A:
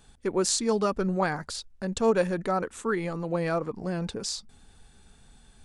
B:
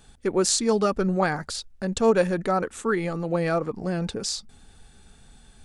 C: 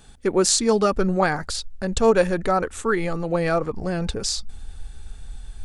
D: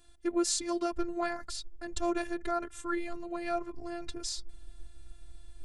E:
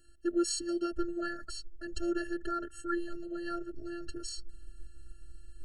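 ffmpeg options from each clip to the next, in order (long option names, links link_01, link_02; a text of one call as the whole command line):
ffmpeg -i in.wav -af "bandreject=frequency=1000:width=12,volume=3.5dB" out.wav
ffmpeg -i in.wav -af "asubboost=boost=6.5:cutoff=77,volume=3.5dB" out.wav
ffmpeg -i in.wav -af "afftfilt=real='hypot(re,im)*cos(PI*b)':imag='0':win_size=512:overlap=0.75,volume=-8dB" out.wav
ffmpeg -i in.wav -af "afftfilt=real='re*eq(mod(floor(b*sr/1024/650),2),0)':imag='im*eq(mod(floor(b*sr/1024/650),2),0)':win_size=1024:overlap=0.75" out.wav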